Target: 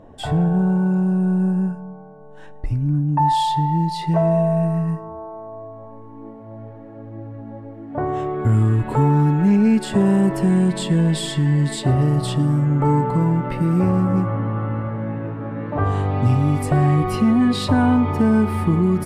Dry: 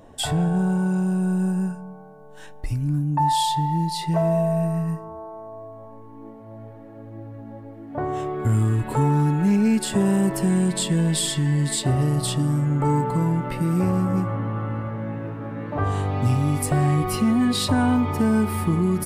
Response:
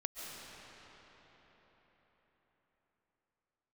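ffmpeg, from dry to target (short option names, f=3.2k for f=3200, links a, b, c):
-filter_complex "[0:a]asetnsamples=n=441:p=0,asendcmd='3.09 lowpass f 2300',lowpass=f=1.1k:p=1[a];[1:a]atrim=start_sample=2205,afade=t=out:st=0.16:d=0.01,atrim=end_sample=7497[b];[a][b]afir=irnorm=-1:irlink=0,volume=7dB"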